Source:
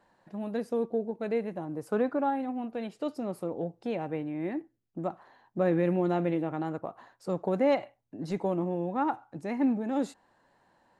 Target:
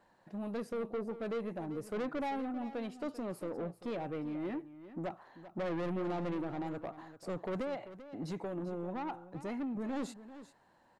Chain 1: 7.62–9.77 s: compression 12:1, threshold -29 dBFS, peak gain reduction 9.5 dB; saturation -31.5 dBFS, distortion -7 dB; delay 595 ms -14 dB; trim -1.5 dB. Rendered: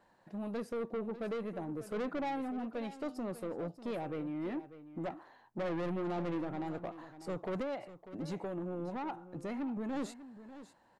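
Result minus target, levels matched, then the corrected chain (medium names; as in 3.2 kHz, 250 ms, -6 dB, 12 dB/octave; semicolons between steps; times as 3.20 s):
echo 204 ms late
7.62–9.77 s: compression 12:1, threshold -29 dBFS, peak gain reduction 9.5 dB; saturation -31.5 dBFS, distortion -7 dB; delay 391 ms -14 dB; trim -1.5 dB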